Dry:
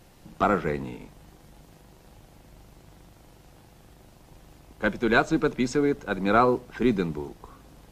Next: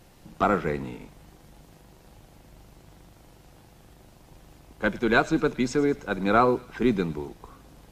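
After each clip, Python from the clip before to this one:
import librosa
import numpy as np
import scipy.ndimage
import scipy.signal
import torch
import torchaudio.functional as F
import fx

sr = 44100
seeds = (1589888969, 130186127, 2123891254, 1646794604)

y = fx.echo_wet_highpass(x, sr, ms=108, feedback_pct=53, hz=2200.0, wet_db=-16.5)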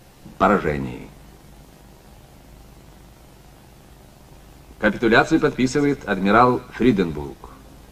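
y = fx.doubler(x, sr, ms=15.0, db=-7)
y = y * 10.0 ** (5.5 / 20.0)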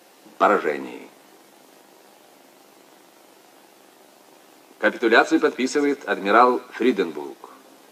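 y = scipy.signal.sosfilt(scipy.signal.butter(4, 280.0, 'highpass', fs=sr, output='sos'), x)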